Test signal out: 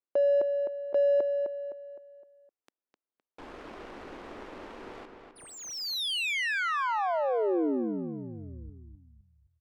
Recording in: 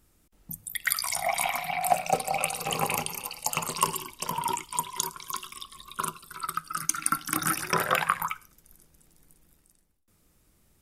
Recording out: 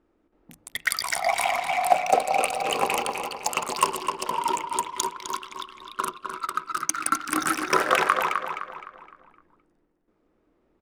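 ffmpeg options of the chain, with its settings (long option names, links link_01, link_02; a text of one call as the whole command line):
ffmpeg -i in.wav -filter_complex "[0:a]lowshelf=frequency=210:width_type=q:width=1.5:gain=-12.5,adynamicsmooth=sensitivity=7.5:basefreq=1500,asplit=2[link_01][link_02];[link_02]adelay=257,lowpass=frequency=3900:poles=1,volume=-5.5dB,asplit=2[link_03][link_04];[link_04]adelay=257,lowpass=frequency=3900:poles=1,volume=0.42,asplit=2[link_05][link_06];[link_06]adelay=257,lowpass=frequency=3900:poles=1,volume=0.42,asplit=2[link_07][link_08];[link_08]adelay=257,lowpass=frequency=3900:poles=1,volume=0.42,asplit=2[link_09][link_10];[link_10]adelay=257,lowpass=frequency=3900:poles=1,volume=0.42[link_11];[link_01][link_03][link_05][link_07][link_09][link_11]amix=inputs=6:normalize=0,volume=3.5dB" out.wav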